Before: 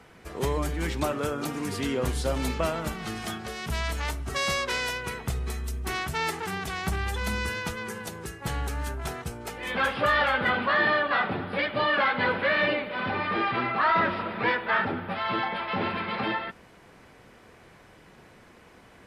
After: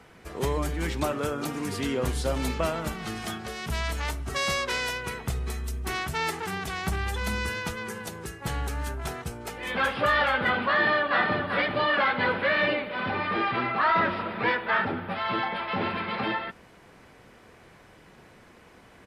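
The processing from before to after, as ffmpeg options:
-filter_complex "[0:a]asplit=2[a][b];[b]afade=t=in:st=10.74:d=0.01,afade=t=out:st=11.36:d=0.01,aecho=0:1:390|780|1170|1560:0.530884|0.159265|0.0477796|0.0143339[c];[a][c]amix=inputs=2:normalize=0"

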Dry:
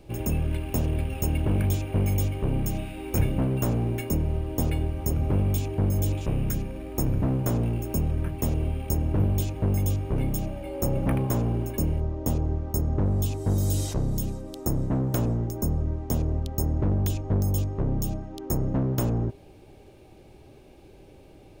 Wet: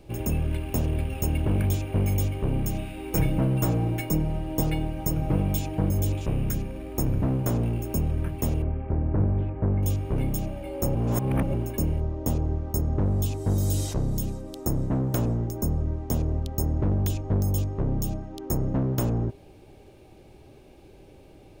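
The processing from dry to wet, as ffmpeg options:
-filter_complex "[0:a]asettb=1/sr,asplit=3[a][b][c];[a]atrim=end=3.124[d];[b]atrim=start=3.12:end=5.91,asetpts=PTS-STARTPTS,afade=t=in:d=0.004:c=qsin,afade=t=out:st=2.786:d=0.004:c=qsin,aecho=1:1:6.3:0.65,atrim=end_sample=123039[e];[c]atrim=start=5.906[f];[d][e]acrossfade=d=0.004:c1=hsin:c2=qsin[g];[g][f]acrossfade=d=0.004:c1=qsin:c2=hsin,asettb=1/sr,asplit=3[h][i][j];[h]atrim=end=8.624[k];[i]atrim=start=8.62:end=9.83,asetpts=PTS-STARTPTS,afade=t=in:d=0.004:c=qsin,afade=t=out:st=1.206:d=0.004:c=qsin,lowpass=f=1.9k:w=0.5412,lowpass=f=1.9k:w=1.3066[l];[j]atrim=start=9.826[m];[k][l]acrossfade=d=0.004:c1=hsin:c2=qsin[n];[n][m]acrossfade=d=0.004:c1=qsin:c2=hsin,asplit=3[o][p][q];[o]atrim=end=10.952[r];[p]atrim=start=10.948:end=11.542,asetpts=PTS-STARTPTS,areverse[s];[q]atrim=start=11.538[t];[r][s]acrossfade=d=0.004:c1=hsin:c2=hsin[u];[u][t]acrossfade=d=0.004:c1=hsin:c2=hsin"

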